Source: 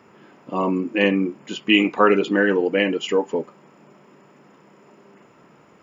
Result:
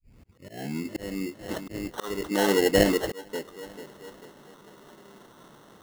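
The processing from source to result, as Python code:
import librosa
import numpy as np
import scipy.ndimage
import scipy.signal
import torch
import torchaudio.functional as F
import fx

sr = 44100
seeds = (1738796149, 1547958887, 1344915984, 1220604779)

y = fx.tape_start_head(x, sr, length_s=0.88)
y = fx.echo_feedback(y, sr, ms=443, feedback_pct=43, wet_db=-19.0)
y = fx.auto_swell(y, sr, attack_ms=698.0)
y = scipy.signal.sosfilt(scipy.signal.cheby1(6, 3, 3700.0, 'lowpass', fs=sr, output='sos'), y)
y = fx.sample_hold(y, sr, seeds[0], rate_hz=2400.0, jitter_pct=0)
y = F.gain(torch.from_numpy(y), 1.5).numpy()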